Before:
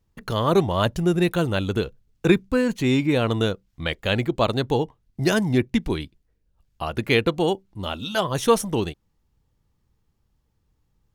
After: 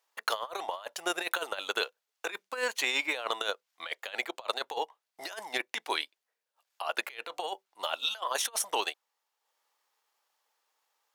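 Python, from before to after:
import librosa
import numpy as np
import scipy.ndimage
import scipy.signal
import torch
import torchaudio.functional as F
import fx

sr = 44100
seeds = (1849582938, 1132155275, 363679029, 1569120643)

y = scipy.signal.sosfilt(scipy.signal.butter(4, 650.0, 'highpass', fs=sr, output='sos'), x)
y = fx.transient(y, sr, attack_db=1, sustain_db=-5)
y = fx.over_compress(y, sr, threshold_db=-32.0, ratio=-0.5)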